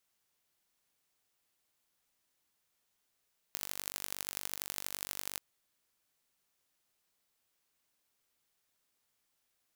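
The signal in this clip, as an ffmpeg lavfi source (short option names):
-f lavfi -i "aevalsrc='0.376*eq(mod(n,906),0)*(0.5+0.5*eq(mod(n,3624),0))':d=1.84:s=44100"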